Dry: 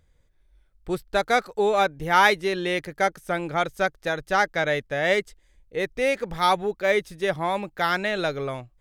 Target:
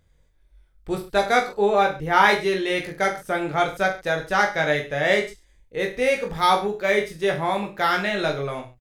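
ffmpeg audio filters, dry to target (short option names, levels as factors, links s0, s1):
-filter_complex "[0:a]asettb=1/sr,asplit=3[s0][s1][s2];[s0]atrim=end=1.534[s3];[s1]atrim=start=1.53:end=2.29,asetpts=PTS-STARTPTS,afade=t=in:d=0.004:c=qsin,afade=t=out:st=0.756:d=0.004:c=qsin,highshelf=f=4100:g=-8[s4];[s2]atrim=start=2.286[s5];[s3][s4]acrossfade=d=0.004:c1=hsin:c2=qsin[s6];[s6][s5]acrossfade=d=0.004:c1=qsin:c2=hsin,aecho=1:1:20|43|69.45|99.87|134.8:0.631|0.398|0.251|0.158|0.1"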